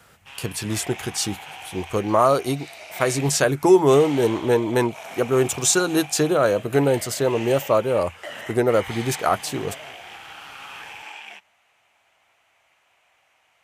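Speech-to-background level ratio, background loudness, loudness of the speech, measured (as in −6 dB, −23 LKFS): 16.0 dB, −37.0 LKFS, −21.0 LKFS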